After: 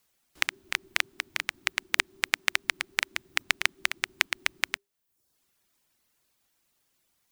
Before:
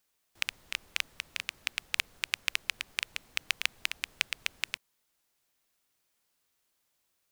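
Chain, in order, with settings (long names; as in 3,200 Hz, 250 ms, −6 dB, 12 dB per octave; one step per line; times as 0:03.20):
reverb reduction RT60 0.68 s
frequency shifter −400 Hz
level +5.5 dB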